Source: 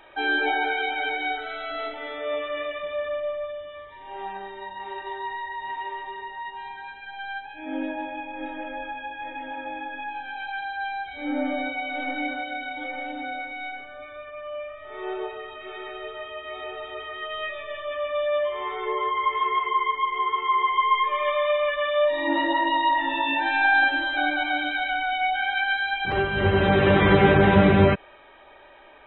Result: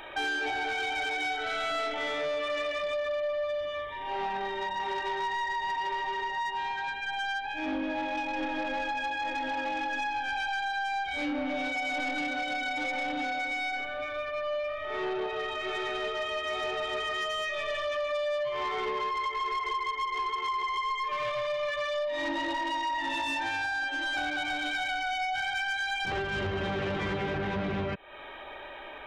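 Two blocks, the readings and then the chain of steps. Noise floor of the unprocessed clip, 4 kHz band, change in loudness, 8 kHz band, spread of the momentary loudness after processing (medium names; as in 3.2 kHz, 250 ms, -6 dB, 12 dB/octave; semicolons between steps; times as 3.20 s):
-44 dBFS, -2.5 dB, -6.5 dB, no reading, 3 LU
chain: treble shelf 3 kHz +5.5 dB; compression 12:1, threshold -31 dBFS, peak gain reduction 20 dB; saturation -32.5 dBFS, distortion -14 dB; trim +6 dB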